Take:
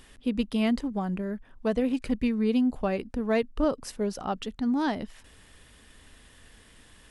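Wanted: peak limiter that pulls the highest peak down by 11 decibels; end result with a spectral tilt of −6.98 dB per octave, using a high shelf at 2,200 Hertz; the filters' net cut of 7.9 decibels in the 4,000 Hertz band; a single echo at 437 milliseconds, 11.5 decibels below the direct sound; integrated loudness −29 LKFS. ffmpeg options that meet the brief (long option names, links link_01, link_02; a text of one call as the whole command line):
ffmpeg -i in.wav -af "highshelf=frequency=2200:gain=-7.5,equalizer=frequency=4000:width_type=o:gain=-4,alimiter=level_in=2.5dB:limit=-24dB:level=0:latency=1,volume=-2.5dB,aecho=1:1:437:0.266,volume=6dB" out.wav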